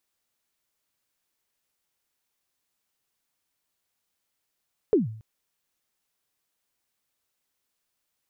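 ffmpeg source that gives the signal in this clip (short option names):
-f lavfi -i "aevalsrc='0.211*pow(10,-3*t/0.55)*sin(2*PI*(470*0.147/log(110/470)*(exp(log(110/470)*min(t,0.147)/0.147)-1)+110*max(t-0.147,0)))':d=0.28:s=44100"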